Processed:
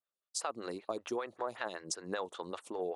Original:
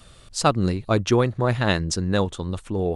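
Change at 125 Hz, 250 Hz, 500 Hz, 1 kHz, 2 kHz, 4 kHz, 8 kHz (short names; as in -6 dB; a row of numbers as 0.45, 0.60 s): -33.5, -20.5, -14.5, -14.0, -15.5, -15.5, -9.5 dB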